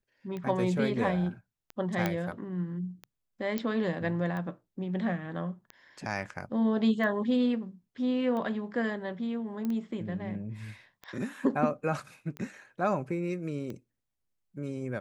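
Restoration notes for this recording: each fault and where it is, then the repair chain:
scratch tick 45 rpm −26 dBFS
0:02.06: click −14 dBFS
0:03.58: click −17 dBFS
0:09.65: click −22 dBFS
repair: click removal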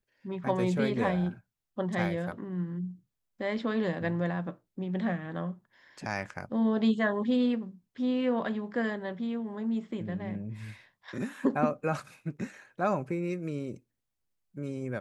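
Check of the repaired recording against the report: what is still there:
none of them is left

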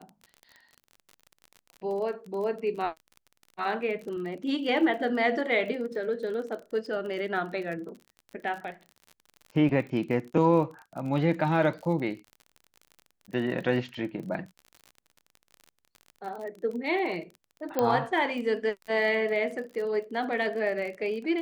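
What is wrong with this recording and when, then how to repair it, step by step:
surface crackle 37 per second −37 dBFS
0:17.79: click −13 dBFS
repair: click removal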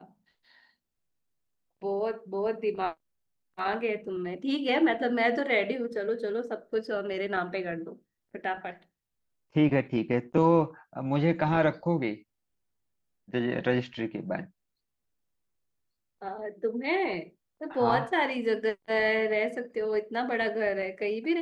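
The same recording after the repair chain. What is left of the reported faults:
none of them is left

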